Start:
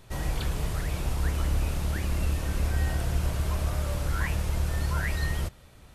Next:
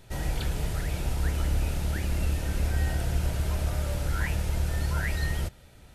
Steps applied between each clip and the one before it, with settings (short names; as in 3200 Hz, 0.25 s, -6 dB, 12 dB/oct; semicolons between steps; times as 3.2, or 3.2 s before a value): notch 1100 Hz, Q 5.5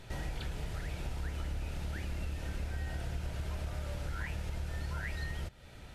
bell 2500 Hz +3 dB 2.7 oct; compressor 3:1, threshold -40 dBFS, peak gain reduction 14 dB; high shelf 8400 Hz -9.5 dB; gain +1.5 dB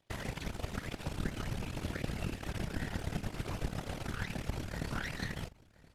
added harmonics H 3 -11 dB, 7 -33 dB, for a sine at -25.5 dBFS; whisperiser; echo 1.024 s -22.5 dB; gain +8 dB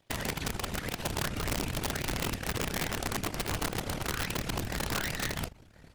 wrapped overs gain 30.5 dB; record warp 33 1/3 rpm, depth 160 cents; gain +6 dB